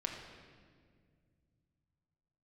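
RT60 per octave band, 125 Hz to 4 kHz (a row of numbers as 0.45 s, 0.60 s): 3.9 s, 3.0 s, 2.3 s, 1.6 s, 1.6 s, 1.4 s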